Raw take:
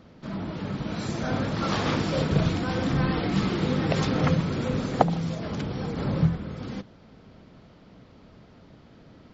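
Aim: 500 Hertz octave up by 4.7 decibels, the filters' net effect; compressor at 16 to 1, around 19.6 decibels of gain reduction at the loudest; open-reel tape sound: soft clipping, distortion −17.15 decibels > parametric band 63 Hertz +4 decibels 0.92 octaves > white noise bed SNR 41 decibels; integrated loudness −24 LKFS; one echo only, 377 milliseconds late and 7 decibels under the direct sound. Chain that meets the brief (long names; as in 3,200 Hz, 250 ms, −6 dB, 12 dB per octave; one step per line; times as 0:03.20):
parametric band 500 Hz +5.5 dB
downward compressor 16 to 1, threshold −31 dBFS
single-tap delay 377 ms −7 dB
soft clipping −28.5 dBFS
parametric band 63 Hz +4 dB 0.92 octaves
white noise bed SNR 41 dB
level +12.5 dB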